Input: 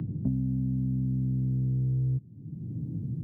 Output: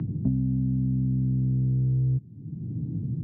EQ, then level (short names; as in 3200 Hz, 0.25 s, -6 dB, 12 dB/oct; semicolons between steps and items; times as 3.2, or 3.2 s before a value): air absorption 150 m; notch 550 Hz, Q 12; +3.5 dB